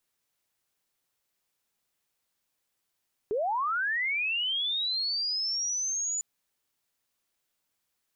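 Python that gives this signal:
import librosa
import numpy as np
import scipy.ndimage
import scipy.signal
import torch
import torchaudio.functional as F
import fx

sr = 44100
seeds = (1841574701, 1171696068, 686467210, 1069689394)

y = fx.chirp(sr, length_s=2.9, from_hz=390.0, to_hz=7000.0, law='linear', from_db=-25.5, to_db=-28.0)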